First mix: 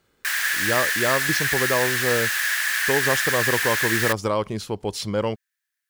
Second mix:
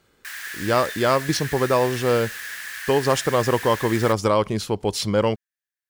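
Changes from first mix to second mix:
speech +4.0 dB
background −10.5 dB

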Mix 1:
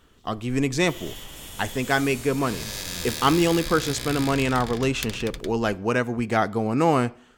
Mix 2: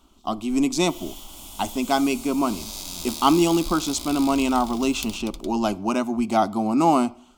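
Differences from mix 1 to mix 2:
speech +4.5 dB
second sound: remove high-frequency loss of the air 450 metres
master: add phaser with its sweep stopped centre 470 Hz, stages 6

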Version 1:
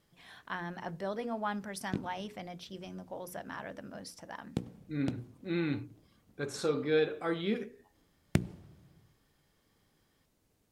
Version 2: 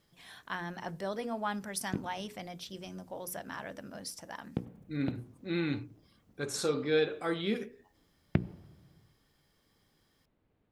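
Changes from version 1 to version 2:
background: add Gaussian smoothing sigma 3.2 samples
master: add high-shelf EQ 4,700 Hz +9.5 dB

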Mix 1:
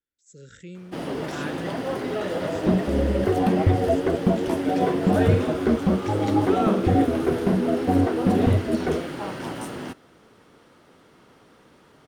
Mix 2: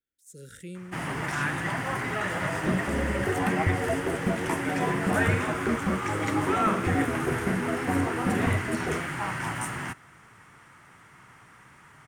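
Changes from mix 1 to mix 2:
speech: remove linear-phase brick-wall low-pass 8,000 Hz
first sound: add octave-band graphic EQ 125/250/500/1,000/2,000/4,000/8,000 Hz +7/−6/−11/+5/+10/−9/+8 dB
second sound −7.0 dB

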